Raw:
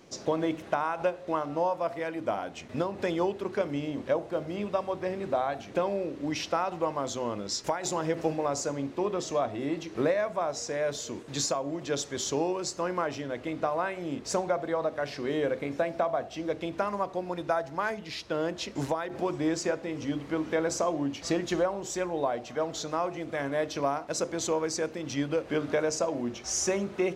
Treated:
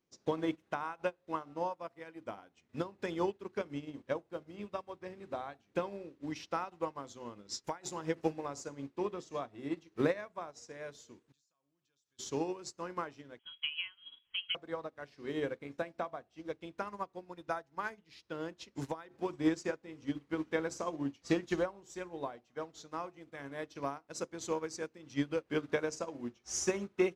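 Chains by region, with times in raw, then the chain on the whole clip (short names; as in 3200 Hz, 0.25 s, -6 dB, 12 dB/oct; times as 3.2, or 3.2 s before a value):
11.32–12.19 passive tone stack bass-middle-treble 5-5-5 + compressor 12:1, threshold -48 dBFS + notch 2000 Hz, Q 5.5
13.39–14.55 rippled Chebyshev high-pass 240 Hz, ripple 6 dB + inverted band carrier 3600 Hz
whole clip: bell 630 Hz -7 dB 0.56 oct; upward expander 2.5:1, over -44 dBFS; gain +1 dB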